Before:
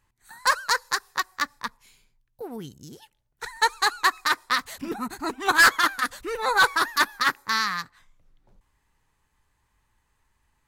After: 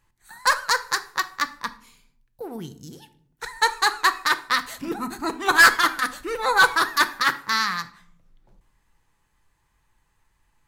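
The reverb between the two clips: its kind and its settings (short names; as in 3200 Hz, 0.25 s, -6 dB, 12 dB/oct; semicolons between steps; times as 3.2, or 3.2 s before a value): shoebox room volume 950 m³, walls furnished, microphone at 0.73 m; gain +1.5 dB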